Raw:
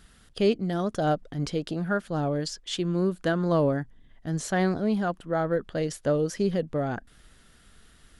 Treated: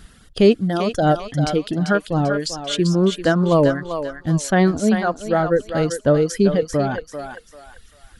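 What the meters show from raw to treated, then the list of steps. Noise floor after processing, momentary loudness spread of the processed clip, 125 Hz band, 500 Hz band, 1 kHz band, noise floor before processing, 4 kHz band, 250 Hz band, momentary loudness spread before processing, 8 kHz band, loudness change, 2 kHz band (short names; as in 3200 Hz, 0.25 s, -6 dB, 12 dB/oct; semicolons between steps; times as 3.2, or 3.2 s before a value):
-50 dBFS, 9 LU, +8.5 dB, +8.5 dB, +8.5 dB, -57 dBFS, +8.5 dB, +8.5 dB, 8 LU, +9.0 dB, +8.5 dB, +8.5 dB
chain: reverb removal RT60 2 s; low shelf 320 Hz +4 dB; on a send: thinning echo 0.392 s, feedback 38%, high-pass 750 Hz, level -5 dB; on the sum: gain +8 dB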